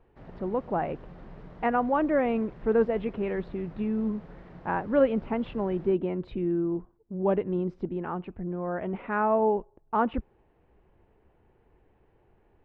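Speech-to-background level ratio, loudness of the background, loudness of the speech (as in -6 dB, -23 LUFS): 20.0 dB, -49.0 LUFS, -29.0 LUFS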